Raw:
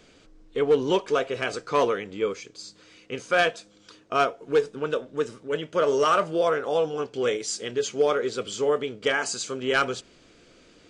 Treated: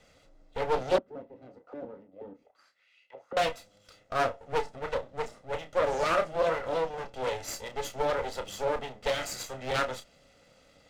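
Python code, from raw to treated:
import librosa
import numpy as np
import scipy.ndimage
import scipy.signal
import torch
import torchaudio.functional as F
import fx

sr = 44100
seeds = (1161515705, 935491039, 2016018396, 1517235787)

y = fx.lower_of_two(x, sr, delay_ms=1.5)
y = fx.doubler(y, sr, ms=31.0, db=-9)
y = fx.small_body(y, sr, hz=(300.0, 550.0, 2000.0), ring_ms=45, db=7)
y = fx.auto_wah(y, sr, base_hz=260.0, top_hz=3300.0, q=3.3, full_db=-27.5, direction='down', at=(0.98, 3.37))
y = fx.doppler_dist(y, sr, depth_ms=0.39)
y = F.gain(torch.from_numpy(y), -5.5).numpy()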